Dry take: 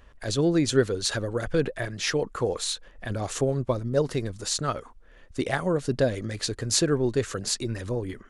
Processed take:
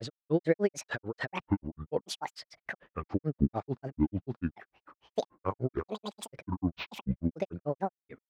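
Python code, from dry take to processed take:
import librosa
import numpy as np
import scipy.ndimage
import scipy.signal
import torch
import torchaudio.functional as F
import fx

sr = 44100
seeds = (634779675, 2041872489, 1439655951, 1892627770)

y = fx.bandpass_edges(x, sr, low_hz=120.0, high_hz=2400.0)
y = fx.granulator(y, sr, seeds[0], grain_ms=103.0, per_s=6.8, spray_ms=355.0, spread_st=12)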